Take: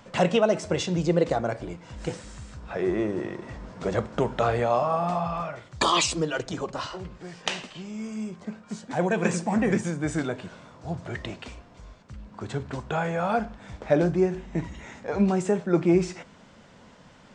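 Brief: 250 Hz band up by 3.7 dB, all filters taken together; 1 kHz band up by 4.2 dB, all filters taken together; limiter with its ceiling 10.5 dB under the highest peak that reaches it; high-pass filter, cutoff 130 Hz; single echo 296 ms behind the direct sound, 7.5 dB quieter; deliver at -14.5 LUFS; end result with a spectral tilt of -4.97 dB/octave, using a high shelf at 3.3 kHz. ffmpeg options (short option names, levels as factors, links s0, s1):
-af "highpass=130,equalizer=f=250:t=o:g=6,equalizer=f=1000:t=o:g=4.5,highshelf=f=3300:g=7,alimiter=limit=0.168:level=0:latency=1,aecho=1:1:296:0.422,volume=3.98"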